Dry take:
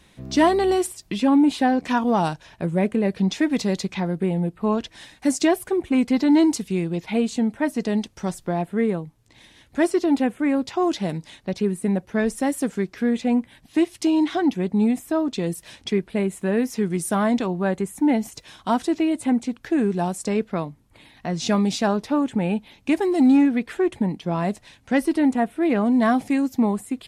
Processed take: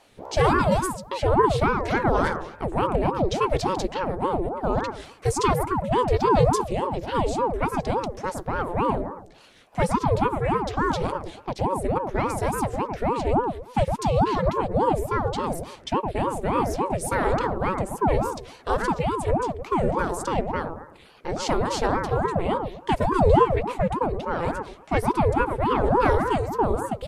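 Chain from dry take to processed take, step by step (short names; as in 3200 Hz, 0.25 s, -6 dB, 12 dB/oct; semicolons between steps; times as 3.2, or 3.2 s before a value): analogue delay 0.111 s, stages 1024, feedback 34%, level -5 dB; ring modulator with a swept carrier 460 Hz, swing 65%, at 3.5 Hz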